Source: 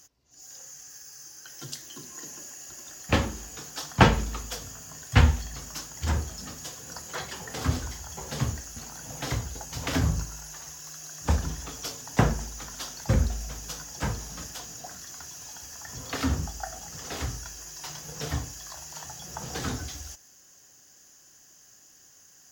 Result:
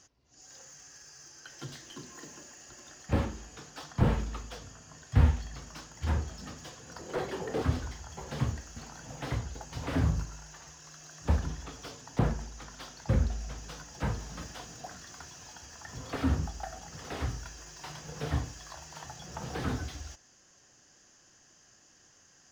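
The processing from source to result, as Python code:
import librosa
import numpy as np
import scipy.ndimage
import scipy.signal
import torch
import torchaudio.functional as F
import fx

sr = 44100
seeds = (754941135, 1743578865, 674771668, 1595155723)

y = fx.peak_eq(x, sr, hz=390.0, db=14.0, octaves=1.5, at=(6.99, 7.62))
y = fx.rider(y, sr, range_db=5, speed_s=2.0)
y = fx.air_absorb(y, sr, metres=100.0)
y = fx.slew_limit(y, sr, full_power_hz=41.0)
y = y * librosa.db_to_amplitude(-4.0)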